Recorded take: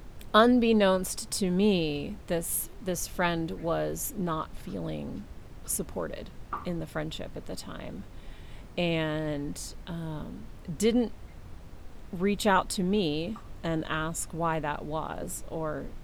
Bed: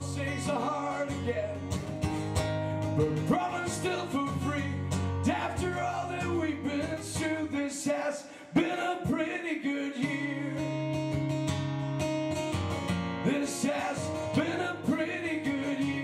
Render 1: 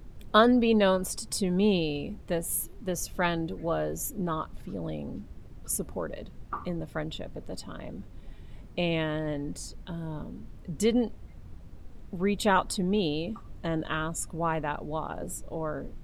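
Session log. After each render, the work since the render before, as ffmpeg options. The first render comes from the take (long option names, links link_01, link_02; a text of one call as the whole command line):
ffmpeg -i in.wav -af "afftdn=noise_reduction=8:noise_floor=-46" out.wav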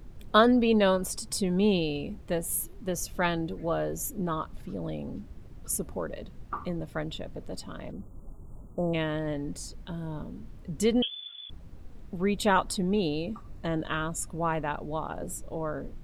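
ffmpeg -i in.wav -filter_complex "[0:a]asplit=3[link_01][link_02][link_03];[link_01]afade=type=out:start_time=7.91:duration=0.02[link_04];[link_02]asuperstop=centerf=3100:order=20:qfactor=0.57,afade=type=in:start_time=7.91:duration=0.02,afade=type=out:start_time=8.93:duration=0.02[link_05];[link_03]afade=type=in:start_time=8.93:duration=0.02[link_06];[link_04][link_05][link_06]amix=inputs=3:normalize=0,asettb=1/sr,asplit=3[link_07][link_08][link_09];[link_07]atrim=end=11.024[link_10];[link_08]atrim=start=11.02:end=11.5,asetpts=PTS-STARTPTS,afade=type=in:duration=0.004:curve=qsin,afade=type=out:start_time=0.476:duration=0.004:curve=qsin,lowpass=frequency=3000:width_type=q:width=0.5098,lowpass=frequency=3000:width_type=q:width=0.6013,lowpass=frequency=3000:width_type=q:width=0.9,lowpass=frequency=3000:width_type=q:width=2.563,afreqshift=-3500[link_11];[link_09]atrim=start=11.496[link_12];[link_10][link_11]acrossfade=duration=0.004:curve1=hsin:curve2=qsin[link_13];[link_13][link_12]acrossfade=duration=0.004:curve1=qsin:curve2=hsin,asettb=1/sr,asplit=3[link_14][link_15][link_16];[link_14]atrim=end=12.914[link_17];[link_15]atrim=start=12.91:end=13.65,asetpts=PTS-STARTPTS,afade=type=in:duration=0.004:curve=qsin,afade=type=out:start_time=0.736:duration=0.004:curve=qsin,bandreject=frequency=3200:width=6.8[link_18];[link_16]atrim=start=13.646[link_19];[link_17][link_18]acrossfade=duration=0.004:curve1=hsin:curve2=qsin[link_20];[link_20][link_19]acrossfade=duration=0.004:curve1=qsin:curve2=hsin" out.wav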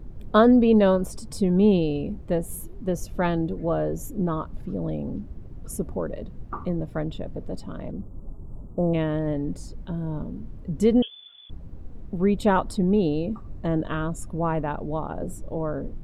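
ffmpeg -i in.wav -af "tiltshelf=frequency=1200:gain=7" out.wav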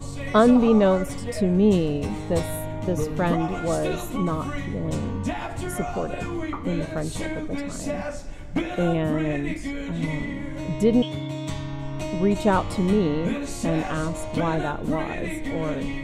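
ffmpeg -i in.wav -i bed.wav -filter_complex "[1:a]volume=0dB[link_01];[0:a][link_01]amix=inputs=2:normalize=0" out.wav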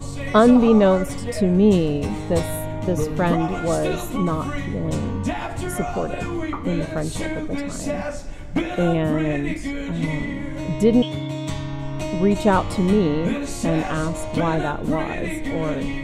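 ffmpeg -i in.wav -af "volume=3dB,alimiter=limit=-3dB:level=0:latency=1" out.wav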